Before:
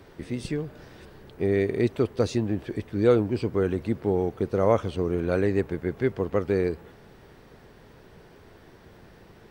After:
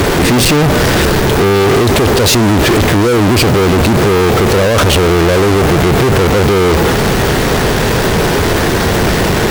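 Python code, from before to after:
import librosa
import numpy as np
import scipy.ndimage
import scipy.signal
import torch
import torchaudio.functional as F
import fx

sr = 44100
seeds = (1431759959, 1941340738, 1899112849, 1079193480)

y = fx.over_compress(x, sr, threshold_db=-30.0, ratio=-1.0)
y = fx.fuzz(y, sr, gain_db=53.0, gate_db=-53.0)
y = y * librosa.db_to_amplitude(5.0)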